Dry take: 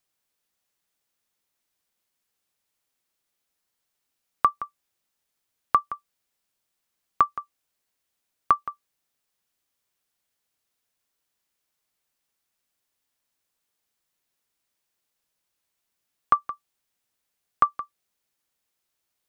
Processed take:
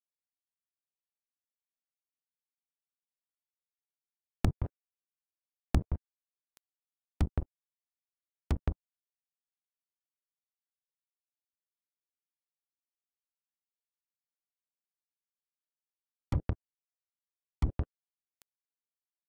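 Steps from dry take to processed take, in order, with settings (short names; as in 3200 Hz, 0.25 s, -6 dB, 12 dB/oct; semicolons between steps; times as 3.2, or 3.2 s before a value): treble ducked by the level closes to 850 Hz, closed at -24.5 dBFS; flange 1.5 Hz, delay 7.4 ms, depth 6.9 ms, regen -49%; in parallel at +2.5 dB: compressor 10:1, threshold -29 dBFS, peak gain reduction 9 dB; on the sum: limiter -17.5 dBFS, peak gain reduction 12.5 dB; sample-rate reducer 1100 Hz, jitter 0%; diffused feedback echo 0.825 s, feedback 64%, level -15 dB; bit-crush 7-bit; treble ducked by the level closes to 390 Hz, closed at -32 dBFS; gain +6.5 dB; Vorbis 128 kbps 44100 Hz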